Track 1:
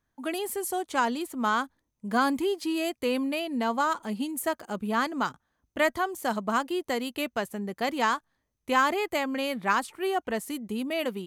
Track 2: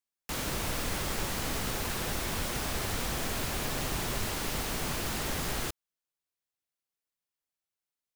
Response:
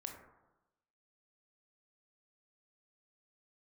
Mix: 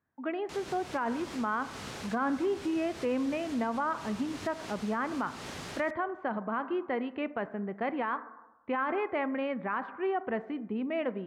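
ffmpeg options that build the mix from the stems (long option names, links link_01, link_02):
-filter_complex "[0:a]lowpass=frequency=2200:width=0.5412,lowpass=frequency=2200:width=1.3066,volume=-4dB,asplit=3[link_01][link_02][link_03];[link_02]volume=-6dB[link_04];[1:a]lowpass=6800,adelay=200,volume=-6dB[link_05];[link_03]apad=whole_len=368290[link_06];[link_05][link_06]sidechaincompress=threshold=-39dB:ratio=4:attack=21:release=224[link_07];[2:a]atrim=start_sample=2205[link_08];[link_04][link_08]afir=irnorm=-1:irlink=0[link_09];[link_01][link_07][link_09]amix=inputs=3:normalize=0,highpass=98,alimiter=limit=-22.5dB:level=0:latency=1:release=39"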